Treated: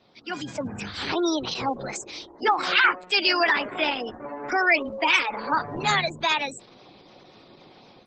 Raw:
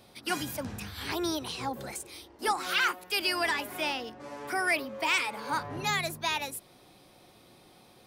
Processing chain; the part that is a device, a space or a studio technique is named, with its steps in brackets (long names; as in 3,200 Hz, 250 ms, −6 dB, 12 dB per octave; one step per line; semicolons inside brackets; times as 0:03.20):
0:04.51–0:05.40: dynamic equaliser 6,700 Hz, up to +4 dB, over −56 dBFS, Q 5.3
noise-suppressed video call (high-pass filter 130 Hz 12 dB per octave; gate on every frequency bin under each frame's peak −20 dB strong; automatic gain control gain up to 10 dB; level −2 dB; Opus 12 kbit/s 48,000 Hz)